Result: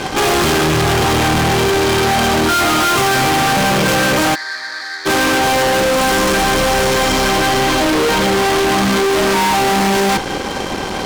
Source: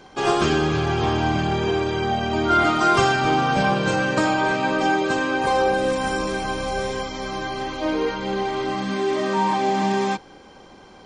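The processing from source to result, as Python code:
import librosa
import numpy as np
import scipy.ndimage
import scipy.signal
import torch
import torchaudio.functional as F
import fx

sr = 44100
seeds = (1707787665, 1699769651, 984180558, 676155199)

y = fx.fuzz(x, sr, gain_db=43.0, gate_db=-50.0)
y = fx.double_bandpass(y, sr, hz=2800.0, octaves=1.3, at=(4.34, 5.05), fade=0.02)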